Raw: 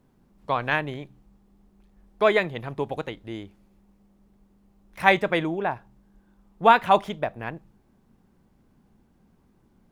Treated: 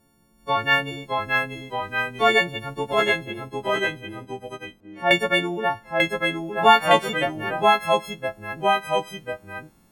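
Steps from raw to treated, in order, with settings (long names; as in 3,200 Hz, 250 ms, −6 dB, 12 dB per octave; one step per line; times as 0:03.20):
every partial snapped to a pitch grid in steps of 4 semitones
0:03.23–0:05.11: resonant band-pass 410 Hz, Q 0.8
delay with pitch and tempo change per echo 588 ms, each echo −1 semitone, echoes 2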